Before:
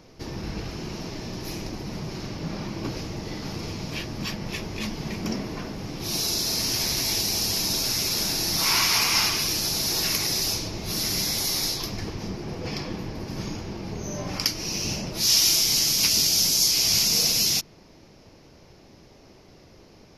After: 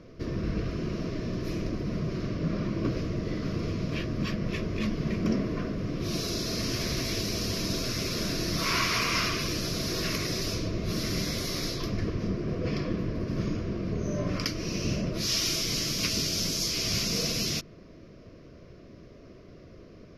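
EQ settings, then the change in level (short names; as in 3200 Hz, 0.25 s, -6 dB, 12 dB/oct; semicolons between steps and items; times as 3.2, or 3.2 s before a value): Butterworth band-stop 840 Hz, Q 2.6; LPF 1300 Hz 6 dB/oct; +3.0 dB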